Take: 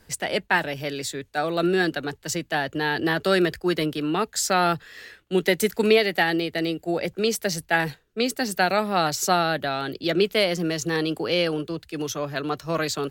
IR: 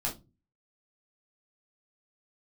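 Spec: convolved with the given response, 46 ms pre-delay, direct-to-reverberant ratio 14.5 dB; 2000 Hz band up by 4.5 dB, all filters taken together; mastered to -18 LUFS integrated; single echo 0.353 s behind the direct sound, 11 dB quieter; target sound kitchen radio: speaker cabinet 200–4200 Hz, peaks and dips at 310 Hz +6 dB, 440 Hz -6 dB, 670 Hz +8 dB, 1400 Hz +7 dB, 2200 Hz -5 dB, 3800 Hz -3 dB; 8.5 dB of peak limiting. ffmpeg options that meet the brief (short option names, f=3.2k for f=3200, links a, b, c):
-filter_complex "[0:a]equalizer=f=2k:t=o:g=4,alimiter=limit=-13.5dB:level=0:latency=1,aecho=1:1:353:0.282,asplit=2[a][b];[1:a]atrim=start_sample=2205,adelay=46[c];[b][c]afir=irnorm=-1:irlink=0,volume=-19dB[d];[a][d]amix=inputs=2:normalize=0,highpass=200,equalizer=f=310:t=q:w=4:g=6,equalizer=f=440:t=q:w=4:g=-6,equalizer=f=670:t=q:w=4:g=8,equalizer=f=1.4k:t=q:w=4:g=7,equalizer=f=2.2k:t=q:w=4:g=-5,equalizer=f=3.8k:t=q:w=4:g=-3,lowpass=f=4.2k:w=0.5412,lowpass=f=4.2k:w=1.3066,volume=5.5dB"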